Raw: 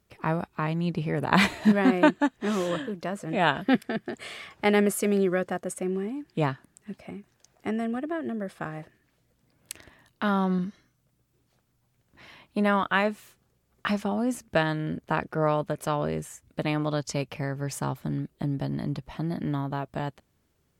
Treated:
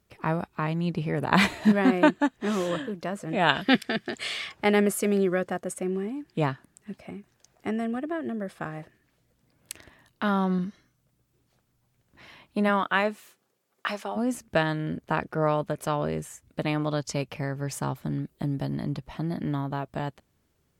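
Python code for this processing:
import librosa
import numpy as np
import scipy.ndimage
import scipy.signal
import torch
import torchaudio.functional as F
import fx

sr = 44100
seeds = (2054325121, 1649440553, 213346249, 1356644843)

y = fx.peak_eq(x, sr, hz=4200.0, db=11.0, octaves=2.4, at=(3.49, 4.52))
y = fx.highpass(y, sr, hz=fx.line((12.68, 150.0), (14.15, 490.0)), slope=12, at=(12.68, 14.15), fade=0.02)
y = fx.high_shelf(y, sr, hz=9100.0, db=6.5, at=(18.27, 18.77))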